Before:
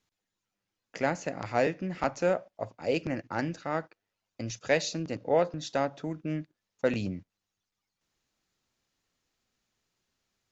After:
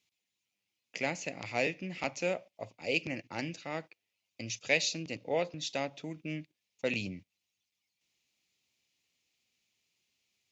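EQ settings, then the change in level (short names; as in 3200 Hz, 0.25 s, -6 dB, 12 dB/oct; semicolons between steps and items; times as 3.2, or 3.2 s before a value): HPF 79 Hz; resonant high shelf 1900 Hz +7 dB, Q 3; -6.0 dB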